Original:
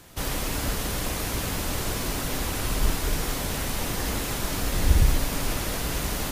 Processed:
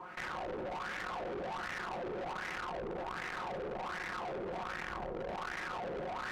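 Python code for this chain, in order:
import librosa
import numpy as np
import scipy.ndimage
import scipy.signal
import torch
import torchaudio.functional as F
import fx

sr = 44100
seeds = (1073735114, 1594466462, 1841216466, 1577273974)

p1 = scipy.signal.medfilt(x, 25)
p2 = fx.notch(p1, sr, hz=590.0, q=12.0)
p3 = p2 + 0.89 * np.pad(p2, (int(5.5 * sr / 1000.0), 0))[:len(p2)]
p4 = fx.fuzz(p3, sr, gain_db=38.0, gate_db=-35.0)
p5 = p3 + (p4 * librosa.db_to_amplitude(-6.5))
p6 = fx.wah_lfo(p5, sr, hz=1.3, low_hz=450.0, high_hz=1900.0, q=4.2)
p7 = fx.tube_stage(p6, sr, drive_db=39.0, bias=0.4)
p8 = fx.env_flatten(p7, sr, amount_pct=70)
y = p8 * librosa.db_to_amplitude(1.0)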